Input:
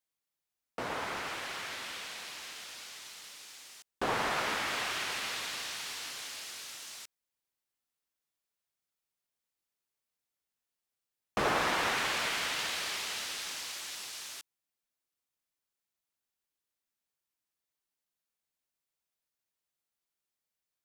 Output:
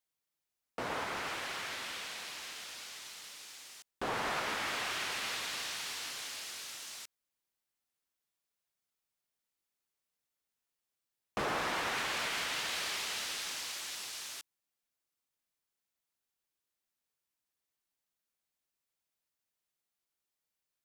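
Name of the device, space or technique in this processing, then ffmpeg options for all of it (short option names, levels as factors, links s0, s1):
soft clipper into limiter: -af "asoftclip=type=tanh:threshold=0.0891,alimiter=level_in=1.33:limit=0.0631:level=0:latency=1:release=228,volume=0.75"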